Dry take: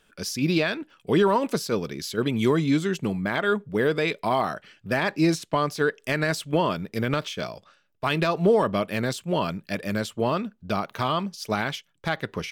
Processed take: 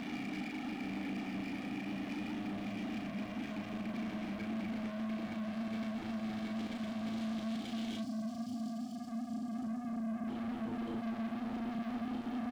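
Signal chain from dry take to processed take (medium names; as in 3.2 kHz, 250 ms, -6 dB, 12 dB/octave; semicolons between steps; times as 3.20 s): vowel filter i; Paulstretch 27×, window 0.25 s, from 9.78 s; peak limiter -38 dBFS, peak gain reduction 10.5 dB; peaking EQ 240 Hz +14 dB 0.46 oct; on a send: reverse echo 548 ms -7.5 dB; on the sum: waveshaping leveller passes 2; time-frequency box 8.00–10.28 s, 300–4300 Hz -18 dB; saturation -39.5 dBFS, distortion -9 dB; doubling 36 ms -4 dB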